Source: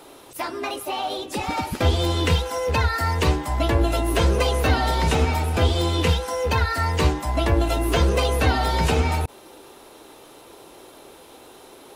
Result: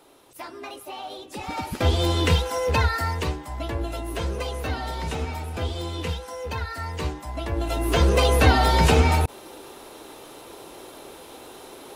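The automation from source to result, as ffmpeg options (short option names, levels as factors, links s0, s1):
-af "volume=3.98,afade=t=in:st=1.31:d=0.74:silence=0.354813,afade=t=out:st=2.82:d=0.52:silence=0.354813,afade=t=in:st=7.5:d=0.84:silence=0.251189"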